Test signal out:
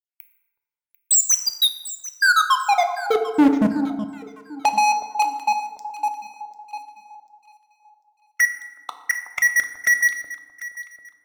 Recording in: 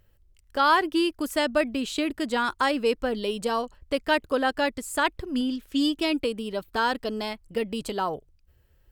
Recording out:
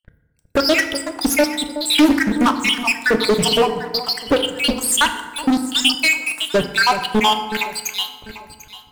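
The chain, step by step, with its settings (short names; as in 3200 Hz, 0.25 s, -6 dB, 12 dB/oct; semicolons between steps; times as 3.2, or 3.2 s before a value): random spectral dropouts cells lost 84%; bell 690 Hz -2.5 dB 1.2 oct; compressor 6:1, threshold -29 dBFS; sample leveller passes 5; on a send: echo with dull and thin repeats by turns 0.372 s, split 1000 Hz, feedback 54%, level -11 dB; on the sum: FDN reverb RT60 1.3 s, low-frequency decay 1.05×, high-frequency decay 0.55×, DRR 6.5 dB; Doppler distortion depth 0.23 ms; gain +8 dB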